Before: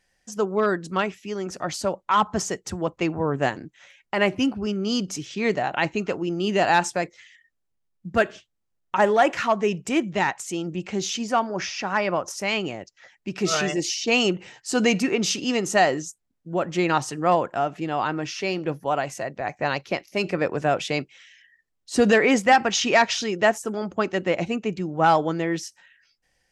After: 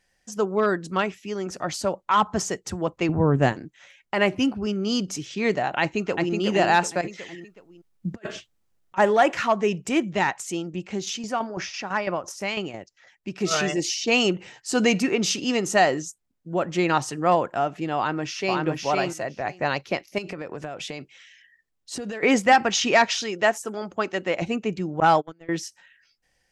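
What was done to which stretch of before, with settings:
0:03.09–0:03.53: low-shelf EQ 250 Hz +11.5 dB
0:05.80–0:06.33: delay throw 370 ms, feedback 35%, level −4 dB
0:07.01–0:08.98: compressor whose output falls as the input rises −32 dBFS, ratio −0.5
0:10.57–0:13.51: shaped tremolo saw down 6 Hz, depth 60%
0:17.97–0:18.61: delay throw 510 ms, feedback 10%, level −2 dB
0:20.18–0:22.23: downward compressor 12 to 1, threshold −29 dBFS
0:23.09–0:24.42: low-shelf EQ 320 Hz −8 dB
0:25.00–0:25.49: noise gate −22 dBFS, range −34 dB

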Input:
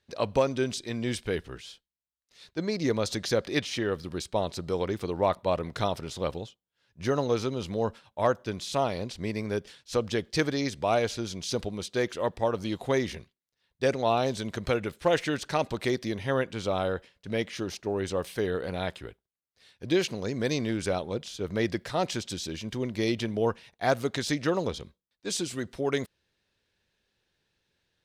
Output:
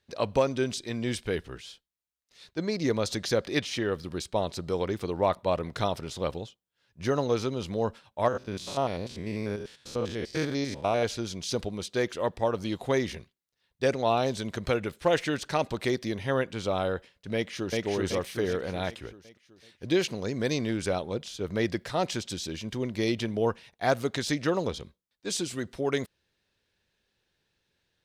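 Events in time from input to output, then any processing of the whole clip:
0:08.28–0:11.03: spectrum averaged block by block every 100 ms
0:17.34–0:17.85: delay throw 380 ms, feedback 50%, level −1 dB

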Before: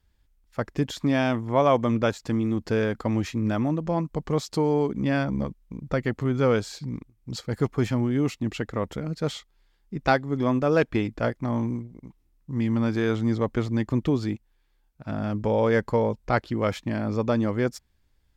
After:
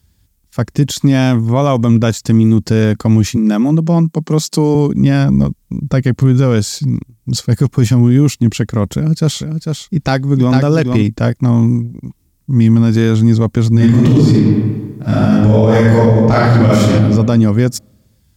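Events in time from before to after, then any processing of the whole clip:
0:03.36–0:04.75: elliptic high-pass filter 160 Hz
0:08.95–0:11.03: single-tap delay 448 ms −6.5 dB
0:13.71–0:16.88: thrown reverb, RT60 1.3 s, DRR −8.5 dB
whole clip: high-pass filter 98 Hz; bass and treble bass +14 dB, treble +13 dB; boost into a limiter +8.5 dB; level −1 dB

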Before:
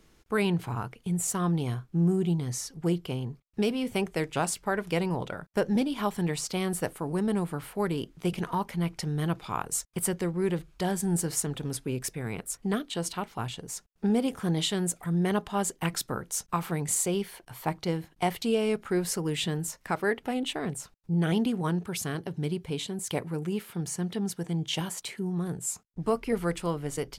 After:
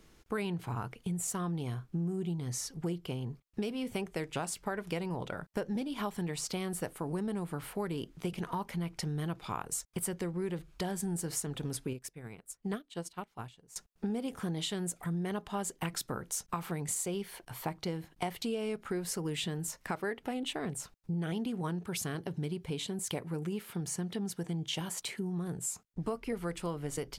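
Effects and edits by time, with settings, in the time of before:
0:11.93–0:13.76: expander for the loud parts 2.5 to 1, over −39 dBFS
whole clip: downward compressor 4 to 1, threshold −33 dBFS

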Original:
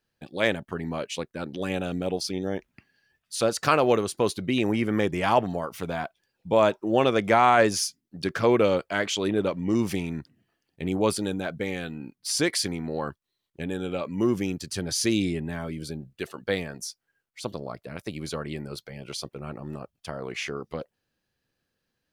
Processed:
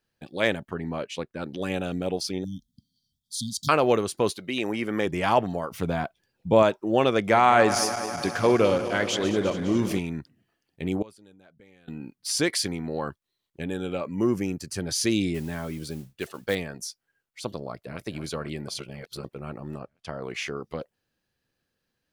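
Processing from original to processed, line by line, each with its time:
0:00.69–0:01.41: high-shelf EQ 3,700 Hz → 5,500 Hz −8.5 dB
0:02.44–0:03.69: linear-phase brick-wall band-stop 280–3,100 Hz
0:04.32–0:05.06: high-pass filter 640 Hz → 230 Hz 6 dB per octave
0:05.71–0:06.63: low-shelf EQ 370 Hz +7.5 dB
0:07.24–0:09.99: feedback delay that plays each chunk backwards 103 ms, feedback 83%, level −12.5 dB
0:11.02–0:11.88: gate with flip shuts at −29 dBFS, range −25 dB
0:13.98–0:14.80: parametric band 3,500 Hz −10 dB 0.52 octaves
0:15.34–0:16.55: noise that follows the level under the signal 20 dB
0:17.62–0:18.02: delay throw 250 ms, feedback 65%, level −11 dB
0:18.68–0:19.24: reverse
0:19.78–0:20.22: high-frequency loss of the air 55 metres

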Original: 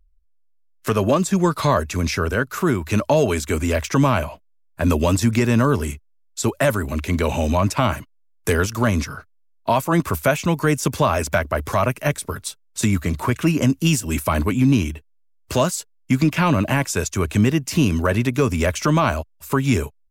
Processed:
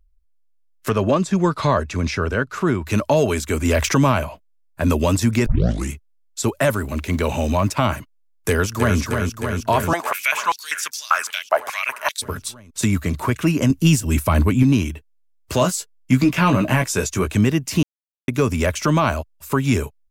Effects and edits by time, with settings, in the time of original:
0:00.89–0:02.87: high-frequency loss of the air 69 metres
0:03.65–0:04.12: envelope flattener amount 50%
0:05.46: tape start 0.45 s
0:06.74–0:07.78: mu-law and A-law mismatch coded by A
0:08.48–0:08.98: delay throw 310 ms, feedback 80%, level −5 dB
0:09.93–0:12.22: high-pass on a step sequencer 5.1 Hz 750–5,300 Hz
0:13.70–0:14.63: low-shelf EQ 150 Hz +8.5 dB
0:15.60–0:17.30: double-tracking delay 16 ms −5 dB
0:17.83–0:18.28: silence

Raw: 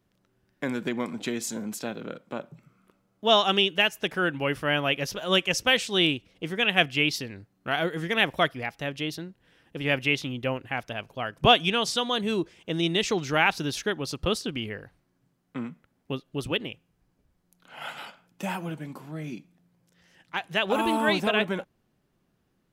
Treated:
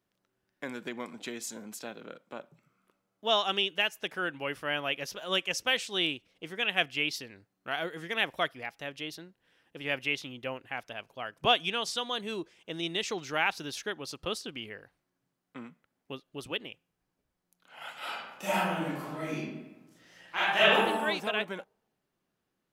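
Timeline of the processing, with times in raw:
0:17.98–0:20.72: thrown reverb, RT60 1.1 s, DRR −11.5 dB
whole clip: low-shelf EQ 240 Hz −11.5 dB; level −5.5 dB

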